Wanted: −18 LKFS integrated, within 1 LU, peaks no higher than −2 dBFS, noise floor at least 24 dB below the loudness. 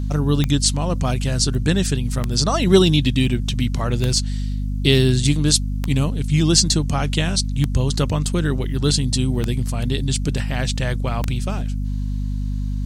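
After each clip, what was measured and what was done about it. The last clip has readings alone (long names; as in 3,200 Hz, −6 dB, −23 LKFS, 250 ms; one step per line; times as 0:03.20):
number of clicks 7; mains hum 50 Hz; hum harmonics up to 250 Hz; level of the hum −20 dBFS; integrated loudness −20.0 LKFS; sample peak −1.0 dBFS; target loudness −18.0 LKFS
→ click removal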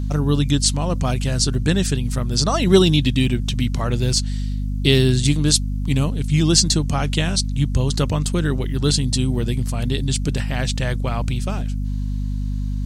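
number of clicks 0; mains hum 50 Hz; hum harmonics up to 250 Hz; level of the hum −20 dBFS
→ mains-hum notches 50/100/150/200/250 Hz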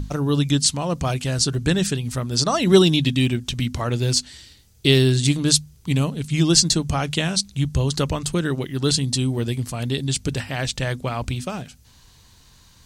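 mains hum none found; integrated loudness −21.0 LKFS; sample peak −2.0 dBFS; target loudness −18.0 LKFS
→ level +3 dB
brickwall limiter −2 dBFS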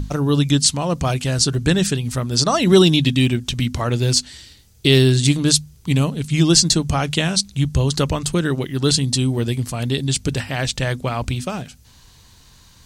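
integrated loudness −18.0 LKFS; sample peak −2.0 dBFS; background noise floor −49 dBFS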